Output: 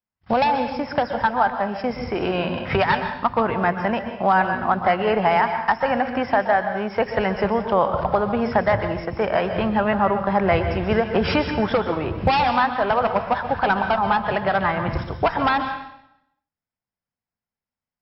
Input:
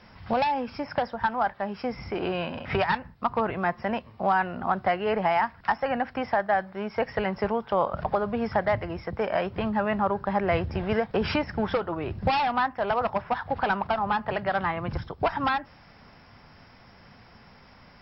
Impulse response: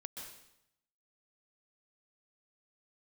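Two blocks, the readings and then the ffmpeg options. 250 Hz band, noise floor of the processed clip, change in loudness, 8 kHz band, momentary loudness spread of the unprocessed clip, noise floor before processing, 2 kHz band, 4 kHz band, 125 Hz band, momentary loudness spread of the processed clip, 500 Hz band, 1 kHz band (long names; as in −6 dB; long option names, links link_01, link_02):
+6.5 dB, below −85 dBFS, +6.0 dB, can't be measured, 6 LU, −53 dBFS, +6.5 dB, +6.0 dB, +6.5 dB, 5 LU, +6.0 dB, +6.0 dB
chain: -filter_complex "[0:a]agate=range=-48dB:threshold=-40dB:ratio=16:detection=peak,asplit=2[link_01][link_02];[1:a]atrim=start_sample=2205[link_03];[link_02][link_03]afir=irnorm=-1:irlink=0,volume=4.5dB[link_04];[link_01][link_04]amix=inputs=2:normalize=0"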